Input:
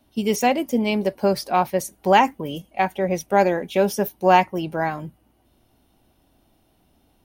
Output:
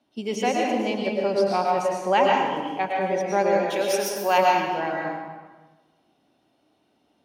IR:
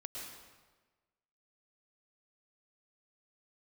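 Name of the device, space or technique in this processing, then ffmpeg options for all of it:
supermarket ceiling speaker: -filter_complex "[0:a]asettb=1/sr,asplit=3[link_01][link_02][link_03];[link_01]atrim=end=3.704[link_04];[link_02]atrim=start=3.7:end=4.38,asetpts=PTS-STARTPTS,afade=type=in:duration=0.004:curve=qsin,afade=type=out:start_time=0.676:duration=0.004:curve=qsin,aemphasis=mode=production:type=riaa[link_05];[link_03]atrim=start=4.376[link_06];[link_04][link_05]acrossfade=duration=0.004:curve1=hsin:curve2=qsin[link_07];[link_07][link_06]acrossfade=duration=0.004:curve1=qsin:curve2=hsin,highpass=210,lowpass=6300[link_08];[1:a]atrim=start_sample=2205[link_09];[link_08][link_09]afir=irnorm=-1:irlink=0"

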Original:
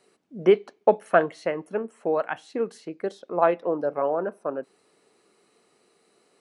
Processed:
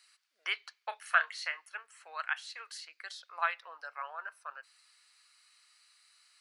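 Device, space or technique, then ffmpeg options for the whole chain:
headphones lying on a table: -filter_complex "[0:a]highpass=frequency=1400:width=0.5412,highpass=frequency=1400:width=1.3066,equalizer=frequency=4600:width_type=o:width=0.37:gain=7.5,asettb=1/sr,asplit=3[link_01][link_02][link_03];[link_01]atrim=end=0.884[link_04];[link_02]atrim=start=0.88:end=1.57,asetpts=PTS-STARTPTS,afade=type=in:duration=0.004:curve=qsin,afade=type=out:start_time=0.686:duration=0.004:curve=qsin,asplit=2[link_05][link_06];[link_06]adelay=30,volume=-12dB[link_07];[link_05][link_07]amix=inputs=2:normalize=0,atrim=end_sample=30429[link_08];[link_03]atrim=start=1.566[link_09];[link_04][link_08]acrossfade=duration=0.004:curve1=hsin:curve2=qsin[link_10];[link_10][link_09]acrossfade=duration=0.004:curve1=qsin:curve2=hsin,volume=2dB"

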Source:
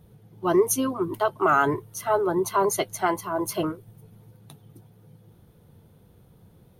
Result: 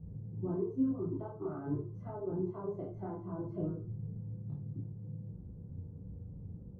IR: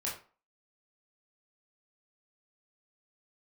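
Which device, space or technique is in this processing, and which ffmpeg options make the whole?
television next door: -filter_complex "[0:a]acompressor=threshold=-34dB:ratio=5,lowpass=260[link_01];[1:a]atrim=start_sample=2205[link_02];[link_01][link_02]afir=irnorm=-1:irlink=0,volume=6.5dB"

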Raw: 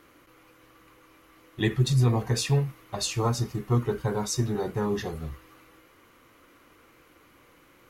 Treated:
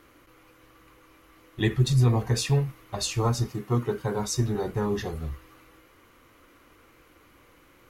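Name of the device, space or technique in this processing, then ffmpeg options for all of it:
low shelf boost with a cut just above: -filter_complex "[0:a]lowshelf=frequency=100:gain=7,equalizer=frequency=160:width_type=o:width=0.77:gain=-2.5,asettb=1/sr,asplit=3[link_01][link_02][link_03];[link_01]atrim=end=3.484[link_04];[link_02]atrim=start=3.48:end=4.19,asetpts=PTS-STARTPTS,afade=type=in:duration=0.004:curve=qsin,afade=type=out:start_time=0.706:duration=0.004:curve=qsin,highpass=130[link_05];[link_03]atrim=start=4.186[link_06];[link_04][link_05]acrossfade=duration=0.004:curve1=hsin:curve2=qsin[link_07];[link_07][link_06]acrossfade=duration=0.004:curve1=qsin:curve2=hsin"

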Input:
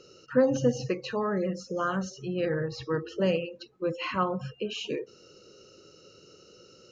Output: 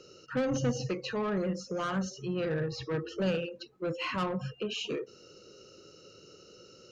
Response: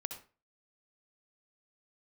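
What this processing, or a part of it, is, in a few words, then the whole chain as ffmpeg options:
one-band saturation: -filter_complex "[0:a]acrossover=split=210|2900[link_01][link_02][link_03];[link_02]asoftclip=type=tanh:threshold=-29dB[link_04];[link_01][link_04][link_03]amix=inputs=3:normalize=0"

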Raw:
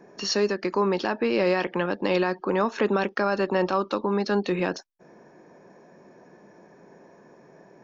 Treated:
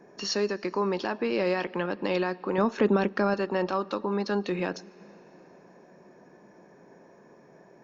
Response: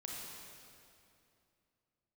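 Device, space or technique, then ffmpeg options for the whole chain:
ducked reverb: -filter_complex "[0:a]asettb=1/sr,asplit=3[link_01][link_02][link_03];[link_01]atrim=end=2.584[link_04];[link_02]atrim=start=2.58:end=3.34,asetpts=PTS-STARTPTS,afade=type=in:duration=0.004:curve=qsin,afade=type=out:start_time=0.756:duration=0.004:curve=qsin,lowshelf=frequency=370:gain=9.5[link_05];[link_03]atrim=start=3.336[link_06];[link_04][link_05]acrossfade=duration=0.004:curve1=hsin:curve2=qsin[link_07];[link_07][link_06]acrossfade=duration=0.004:curve1=qsin:curve2=hsin,asplit=3[link_08][link_09][link_10];[1:a]atrim=start_sample=2205[link_11];[link_09][link_11]afir=irnorm=-1:irlink=0[link_12];[link_10]apad=whole_len=345647[link_13];[link_12][link_13]sidechaincompress=threshold=-30dB:ratio=8:attack=22:release=1230,volume=-6.5dB[link_14];[link_08][link_14]amix=inputs=2:normalize=0,volume=-4.5dB"

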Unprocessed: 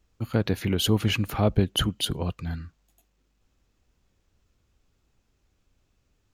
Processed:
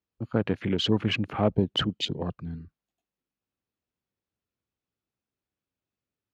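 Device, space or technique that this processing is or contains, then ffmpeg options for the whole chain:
over-cleaned archive recording: -af "highpass=130,lowpass=5000,afwtdn=0.0158"

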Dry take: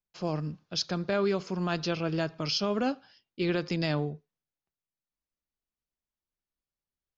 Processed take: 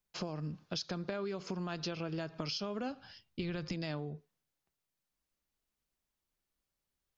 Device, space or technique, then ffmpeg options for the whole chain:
serial compression, peaks first: -filter_complex "[0:a]asplit=3[link_01][link_02][link_03];[link_01]afade=type=out:start_time=2.88:duration=0.02[link_04];[link_02]asubboost=boost=5.5:cutoff=140,afade=type=in:start_time=2.88:duration=0.02,afade=type=out:start_time=3.72:duration=0.02[link_05];[link_03]afade=type=in:start_time=3.72:duration=0.02[link_06];[link_04][link_05][link_06]amix=inputs=3:normalize=0,acompressor=threshold=-35dB:ratio=6,acompressor=threshold=-43dB:ratio=2.5,volume=5.5dB"

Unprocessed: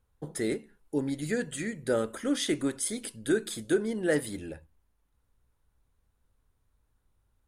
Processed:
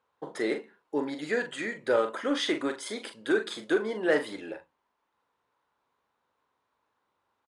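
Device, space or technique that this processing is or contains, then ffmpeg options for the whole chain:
intercom: -filter_complex "[0:a]highpass=390,lowpass=4000,equalizer=frequency=1000:width_type=o:width=0.58:gain=7,asoftclip=type=tanh:threshold=-19dB,asplit=2[link_01][link_02];[link_02]adelay=42,volume=-8dB[link_03];[link_01][link_03]amix=inputs=2:normalize=0,volume=4.5dB"

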